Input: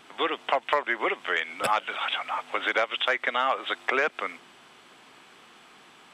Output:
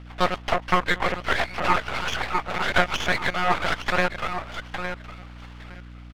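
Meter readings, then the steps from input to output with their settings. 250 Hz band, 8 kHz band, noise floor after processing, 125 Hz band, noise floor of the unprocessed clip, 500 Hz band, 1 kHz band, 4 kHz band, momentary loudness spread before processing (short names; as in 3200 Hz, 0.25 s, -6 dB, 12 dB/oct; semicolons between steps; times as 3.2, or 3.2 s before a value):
+8.0 dB, +7.5 dB, -42 dBFS, n/a, -54 dBFS, +1.5 dB, +3.5 dB, +1.5 dB, 5 LU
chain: feedback echo 0.863 s, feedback 19%, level -9 dB; monotone LPC vocoder at 8 kHz 180 Hz; rotary speaker horn 7.5 Hz, later 1.1 Hz, at 2.58; bell 1300 Hz +10 dB 2.9 oct; half-wave rectifier; dynamic EQ 720 Hz, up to +4 dB, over -43 dBFS, Q 0.71; hum 60 Hz, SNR 15 dB; Doppler distortion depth 0.2 ms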